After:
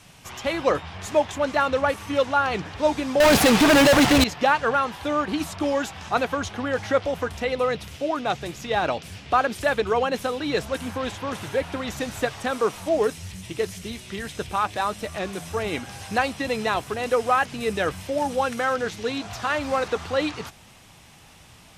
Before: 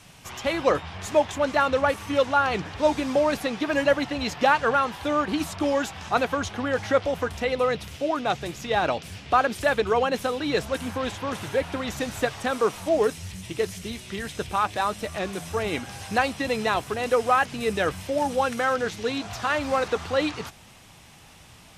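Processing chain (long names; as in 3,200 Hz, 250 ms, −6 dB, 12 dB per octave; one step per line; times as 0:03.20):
0:03.20–0:04.24: fuzz pedal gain 36 dB, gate −41 dBFS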